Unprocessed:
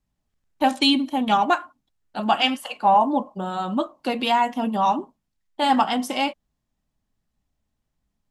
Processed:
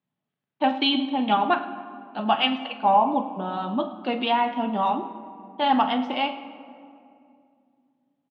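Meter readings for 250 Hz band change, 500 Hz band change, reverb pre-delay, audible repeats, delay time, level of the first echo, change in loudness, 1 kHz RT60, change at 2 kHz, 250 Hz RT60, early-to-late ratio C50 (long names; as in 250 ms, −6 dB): −2.0 dB, −1.0 dB, 5 ms, 2, 46 ms, −14.5 dB, −2.0 dB, 2.4 s, −2.0 dB, 3.2 s, 11.0 dB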